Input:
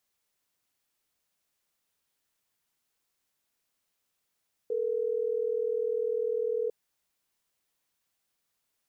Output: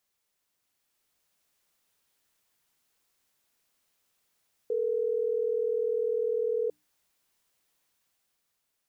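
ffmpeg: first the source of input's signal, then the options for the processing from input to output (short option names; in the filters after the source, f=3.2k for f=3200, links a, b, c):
-f lavfi -i "aevalsrc='0.0335*(sin(2*PI*440*t)+sin(2*PI*480*t))*clip(min(mod(t,6),2-mod(t,6))/0.005,0,1)':d=3.12:s=44100"
-af "bandreject=f=60:t=h:w=6,bandreject=f=120:t=h:w=6,bandreject=f=180:t=h:w=6,bandreject=f=240:t=h:w=6,bandreject=f=300:t=h:w=6,dynaudnorm=f=210:g=9:m=5dB,alimiter=limit=-23dB:level=0:latency=1:release=30"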